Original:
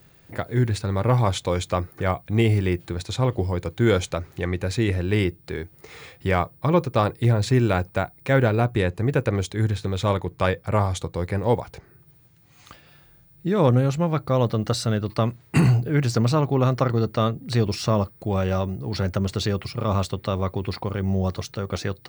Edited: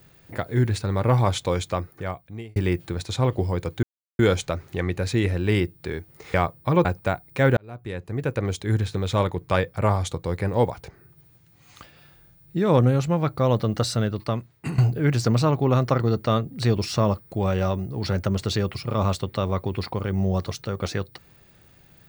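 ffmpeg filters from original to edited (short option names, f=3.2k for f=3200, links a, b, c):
-filter_complex "[0:a]asplit=7[a][b][c][d][e][f][g];[a]atrim=end=2.56,asetpts=PTS-STARTPTS,afade=t=out:st=1.49:d=1.07[h];[b]atrim=start=2.56:end=3.83,asetpts=PTS-STARTPTS,afade=t=in:d=0.004:c=hsin,afade=t=out:st=1.266:d=0.004:c=hsin,apad=pad_dur=0.36[i];[c]atrim=start=3.83:end=5.982,asetpts=PTS-STARTPTS,afade=t=in:d=0.004:c=hsin[j];[d]atrim=start=6.308:end=6.822[k];[e]atrim=start=7.748:end=8.47,asetpts=PTS-STARTPTS,afade=t=out:st=0.718:d=0.004:c=hsin[l];[f]atrim=start=8.47:end=15.68,asetpts=PTS-STARTPTS,afade=t=in:d=1.15,afade=t=out:st=6.4:d=0.81:silence=0.16788[m];[g]atrim=start=15.68,asetpts=PTS-STARTPTS,afade=t=in:d=0.004:c=hsin:silence=0.16788[n];[h][i][j]concat=n=3:v=0:a=1[o];[o][k]acrossfade=d=0.004:c1=hsin:c2=hsin[p];[l][m][n]concat=n=3:v=0:a=1[q];[p][q]acrossfade=d=0.004:c1=hsin:c2=hsin"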